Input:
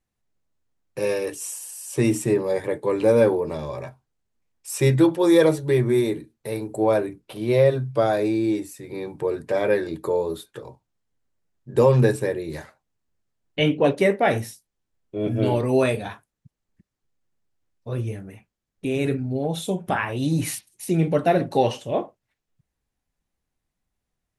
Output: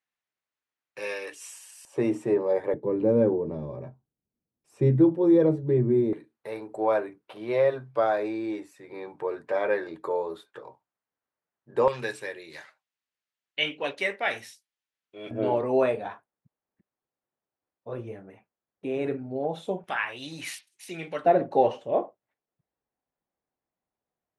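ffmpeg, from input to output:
-af "asetnsamples=n=441:p=0,asendcmd='1.85 bandpass f 660;2.74 bandpass f 220;6.13 bandpass f 1100;11.88 bandpass f 2700;15.31 bandpass f 750;19.84 bandpass f 2400;21.25 bandpass f 640',bandpass=f=2100:t=q:w=0.86:csg=0"

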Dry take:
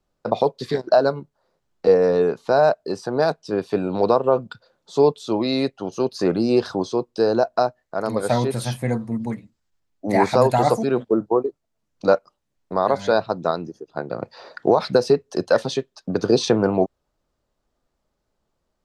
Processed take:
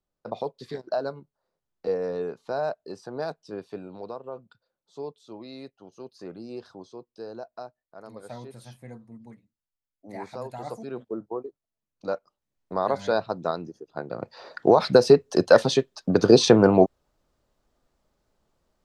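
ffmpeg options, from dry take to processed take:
-af "volume=3.35,afade=t=out:st=3.46:d=0.58:silence=0.398107,afade=t=in:st=10.57:d=0.44:silence=0.473151,afade=t=in:st=12.07:d=0.66:silence=0.398107,afade=t=in:st=14.14:d=1.09:silence=0.398107"

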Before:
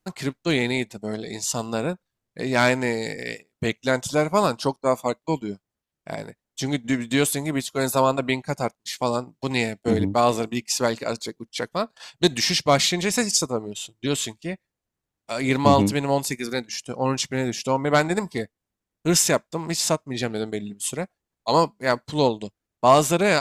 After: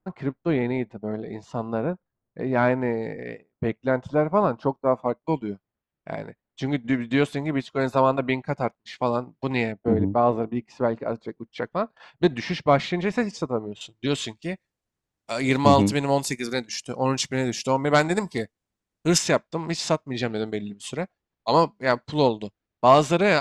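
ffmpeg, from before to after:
-af "asetnsamples=n=441:p=0,asendcmd='5.26 lowpass f 2500;9.72 lowpass f 1100;11.28 lowpass f 1900;13.81 lowpass f 4700;14.43 lowpass f 9500;19.18 lowpass f 4400',lowpass=1300"

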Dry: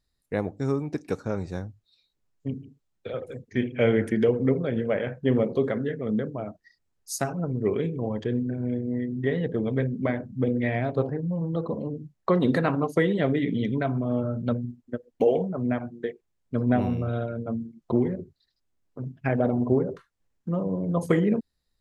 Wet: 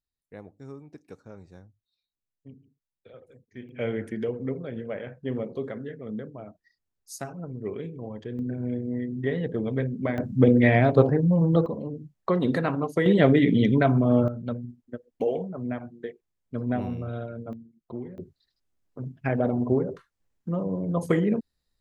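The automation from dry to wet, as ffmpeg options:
-af "asetnsamples=n=441:p=0,asendcmd='3.69 volume volume -8dB;8.39 volume volume -1.5dB;10.18 volume volume 7.5dB;11.66 volume volume -2dB;13.06 volume volume 6dB;14.28 volume volume -5dB;17.53 volume volume -13dB;18.18 volume volume -1dB',volume=0.158"

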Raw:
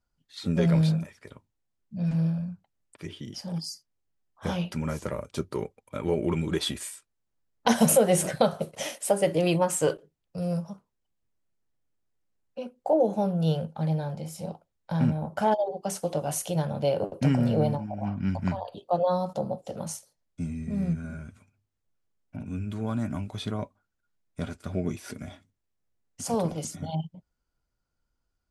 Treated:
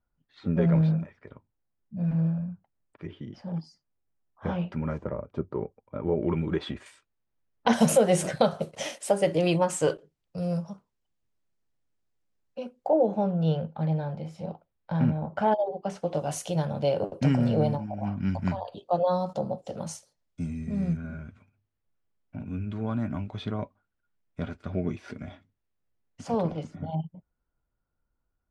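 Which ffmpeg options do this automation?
-af "asetnsamples=n=441:p=0,asendcmd='4.98 lowpass f 1100;6.23 lowpass f 2000;6.86 lowpass f 3300;7.73 lowpass f 7500;12.87 lowpass f 3000;16.14 lowpass f 7200;20.97 lowpass f 3100;26.63 lowpass f 1700',lowpass=1800"

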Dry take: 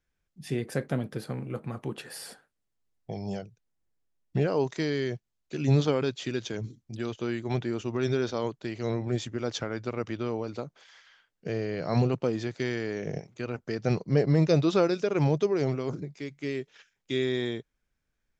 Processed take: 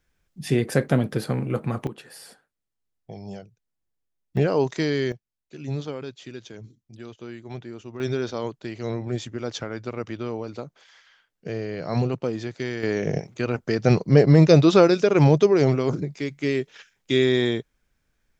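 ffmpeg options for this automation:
-af "asetnsamples=n=441:p=0,asendcmd='1.87 volume volume -3dB;4.37 volume volume 5dB;5.12 volume volume -7dB;8 volume volume 1dB;12.83 volume volume 8.5dB',volume=2.82"

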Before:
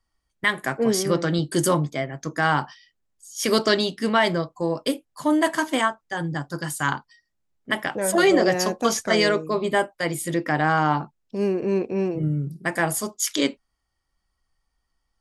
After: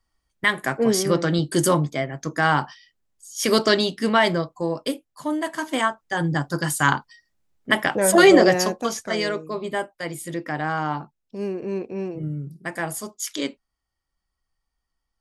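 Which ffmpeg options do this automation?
-af "volume=4.73,afade=t=out:st=4.25:d=1.26:silence=0.375837,afade=t=in:st=5.51:d=0.79:silence=0.251189,afade=t=out:st=8.36:d=0.54:silence=0.316228"

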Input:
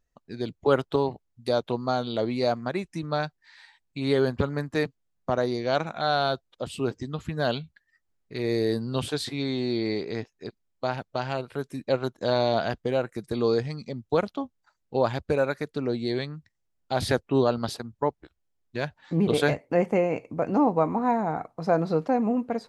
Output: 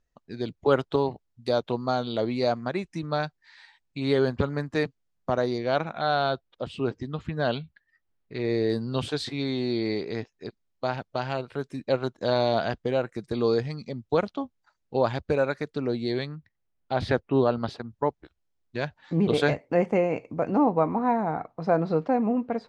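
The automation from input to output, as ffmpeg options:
-af "asetnsamples=n=441:p=0,asendcmd='5.58 lowpass f 3900;8.7 lowpass f 6600;16.35 lowpass f 3200;17.9 lowpass f 6500;20.51 lowpass f 3900',lowpass=7100"

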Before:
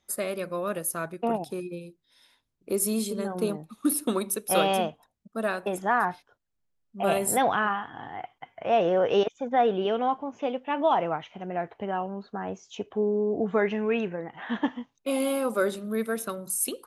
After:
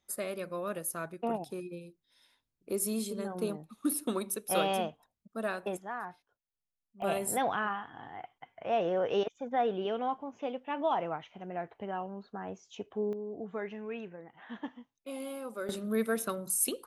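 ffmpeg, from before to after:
-af "asetnsamples=n=441:p=0,asendcmd='5.77 volume volume -15dB;7.02 volume volume -7dB;13.13 volume volume -13.5dB;15.69 volume volume -1.5dB',volume=0.501"

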